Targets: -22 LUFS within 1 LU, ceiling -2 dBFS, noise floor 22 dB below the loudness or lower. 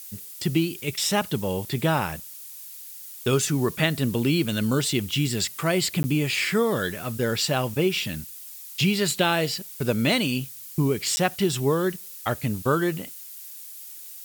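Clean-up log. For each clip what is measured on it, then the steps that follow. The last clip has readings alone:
dropouts 2; longest dropout 10 ms; noise floor -41 dBFS; noise floor target -47 dBFS; loudness -24.5 LUFS; peak level -8.0 dBFS; loudness target -22.0 LUFS
-> interpolate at 6.03/11.16 s, 10 ms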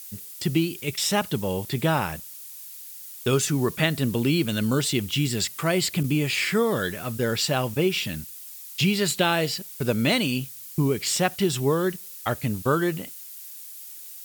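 dropouts 0; noise floor -41 dBFS; noise floor target -47 dBFS
-> noise reduction 6 dB, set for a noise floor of -41 dBFS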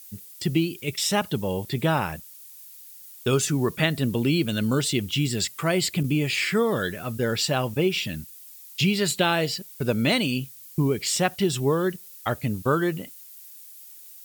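noise floor -46 dBFS; noise floor target -47 dBFS
-> noise reduction 6 dB, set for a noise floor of -46 dBFS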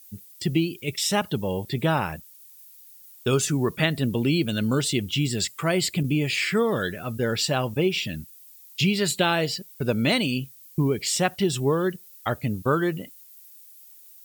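noise floor -49 dBFS; loudness -25.0 LUFS; peak level -8.0 dBFS; loudness target -22.0 LUFS
-> trim +3 dB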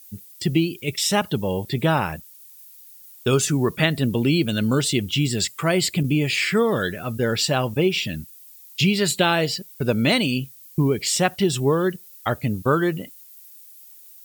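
loudness -22.0 LUFS; peak level -5.0 dBFS; noise floor -46 dBFS

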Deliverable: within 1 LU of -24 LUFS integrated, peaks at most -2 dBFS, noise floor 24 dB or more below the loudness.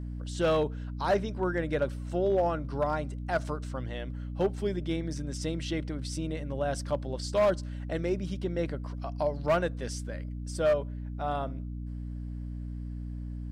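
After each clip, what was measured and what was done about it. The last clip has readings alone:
clipped samples 0.7%; clipping level -19.5 dBFS; hum 60 Hz; highest harmonic 300 Hz; hum level -34 dBFS; loudness -32.0 LUFS; peak level -19.5 dBFS; loudness target -24.0 LUFS
-> clip repair -19.5 dBFS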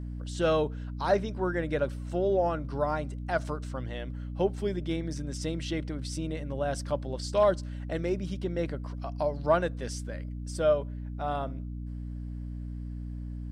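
clipped samples 0.0%; hum 60 Hz; highest harmonic 300 Hz; hum level -34 dBFS
-> de-hum 60 Hz, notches 5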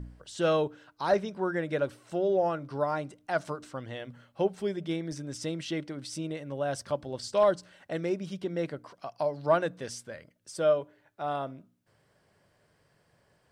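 hum not found; loudness -31.5 LUFS; peak level -12.0 dBFS; loudness target -24.0 LUFS
-> trim +7.5 dB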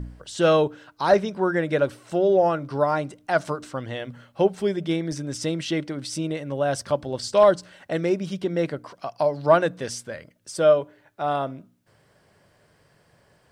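loudness -24.0 LUFS; peak level -4.5 dBFS; noise floor -62 dBFS

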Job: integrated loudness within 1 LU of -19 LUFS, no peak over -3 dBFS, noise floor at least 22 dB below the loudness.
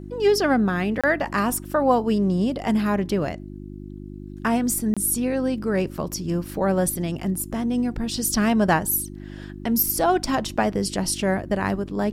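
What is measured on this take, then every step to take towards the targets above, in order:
dropouts 2; longest dropout 26 ms; hum 50 Hz; highest harmonic 350 Hz; hum level -36 dBFS; loudness -23.0 LUFS; peak level -7.5 dBFS; loudness target -19.0 LUFS
-> interpolate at 1.01/4.94 s, 26 ms; de-hum 50 Hz, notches 7; trim +4 dB

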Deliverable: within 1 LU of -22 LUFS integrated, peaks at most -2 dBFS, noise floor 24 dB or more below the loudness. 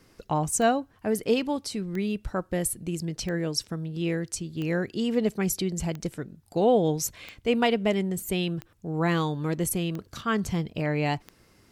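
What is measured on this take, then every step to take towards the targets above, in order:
clicks found 9; loudness -28.0 LUFS; peak level -10.5 dBFS; loudness target -22.0 LUFS
-> de-click; trim +6 dB

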